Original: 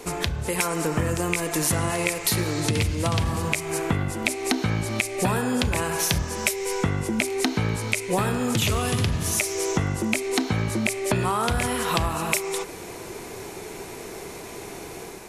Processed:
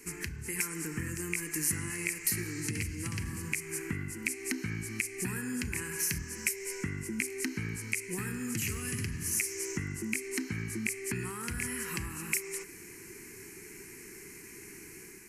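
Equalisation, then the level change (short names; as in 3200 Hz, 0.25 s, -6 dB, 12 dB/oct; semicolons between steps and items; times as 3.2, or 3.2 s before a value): low shelf 220 Hz -11 dB; band shelf 840 Hz -14.5 dB; fixed phaser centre 1500 Hz, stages 4; -3.5 dB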